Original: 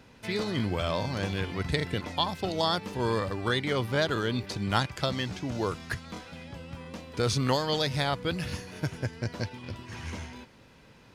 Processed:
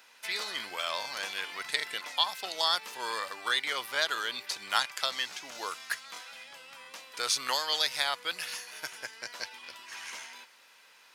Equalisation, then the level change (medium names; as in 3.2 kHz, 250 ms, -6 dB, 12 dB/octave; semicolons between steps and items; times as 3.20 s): high-pass 1.1 kHz 12 dB/octave; treble shelf 8.5 kHz +9.5 dB; +2.0 dB